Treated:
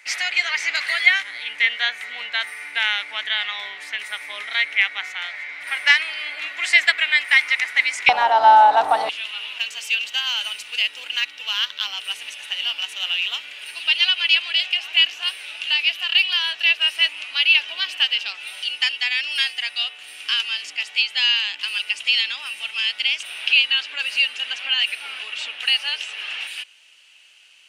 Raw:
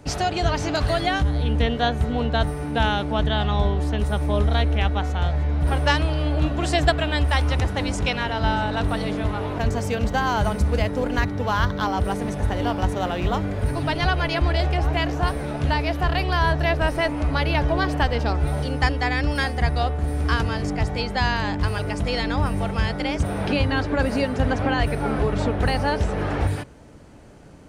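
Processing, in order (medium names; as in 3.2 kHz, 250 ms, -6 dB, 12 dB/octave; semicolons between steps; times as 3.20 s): resonant high-pass 2.1 kHz, resonance Q 7.7, from 8.09 s 800 Hz, from 9.09 s 2.8 kHz; trim +2 dB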